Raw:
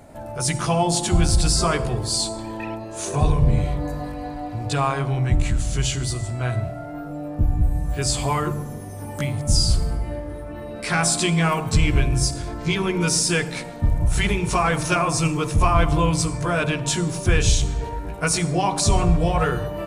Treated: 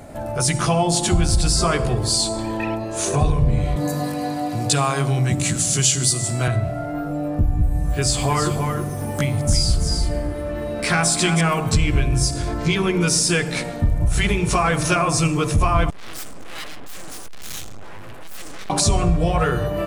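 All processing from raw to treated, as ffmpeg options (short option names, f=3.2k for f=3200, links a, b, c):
-filter_complex "[0:a]asettb=1/sr,asplit=3[a][b][c];[a]atrim=end=3.764[d];[b]atrim=start=3.76:end=6.48,asetpts=PTS-STARTPTS,afade=t=in:d=0.004:c=qsin,afade=t=out:st=2.716:d=0.004:c=qsin,highpass=f=130:w=0.5412,highpass=f=130:w=1.3066,bass=f=250:g=3,treble=f=4k:g=12[e];[c]atrim=start=6.476[f];[d][e]acrossfade=d=0.004:c1=hsin:c2=qsin[g];[g][f]acrossfade=d=0.004:c1=qsin:c2=hsin,asettb=1/sr,asplit=3[h][i][j];[h]atrim=end=7.874[k];[i]atrim=start=7.87:end=11.41,asetpts=PTS-STARTPTS,afade=t=in:d=0.004:c=qsin,afade=t=out:st=3.536:d=0.004:c=qsin,aeval=exprs='sgn(val(0))*max(abs(val(0))-0.00237,0)':c=same,aecho=1:1:322:0.398,atrim=end_sample=156114[l];[j]atrim=start=11.406[m];[k][l]acrossfade=d=0.004:c1=hsin:c2=qsin[n];[n][m]acrossfade=d=0.004:c1=qsin:c2=hsin,asettb=1/sr,asplit=3[o][p][q];[o]atrim=end=15.904[r];[p]atrim=start=15.9:end=18.7,asetpts=PTS-STARTPTS,afade=t=in:d=0.004:c=qsin,afade=t=out:st=2.796:d=0.004:c=qsin,aeval=exprs='abs(val(0))':c=same,acrossover=split=1300[s][t];[s]aeval=exprs='val(0)*(1-0.5/2+0.5/2*cos(2*PI*2.1*n/s))':c=same[u];[t]aeval=exprs='val(0)*(1-0.5/2-0.5/2*cos(2*PI*2.1*n/s))':c=same[v];[u][v]amix=inputs=2:normalize=0,aeval=exprs='(tanh(44.7*val(0)+0.2)-tanh(0.2))/44.7':c=same[w];[q]atrim=start=18.696[x];[r][w]acrossfade=d=0.004:c1=hsin:c2=qsin[y];[y][x]acrossfade=d=0.004:c1=qsin:c2=hsin,acompressor=threshold=-25dB:ratio=2,bandreject=f=920:w=13,volume=6.5dB"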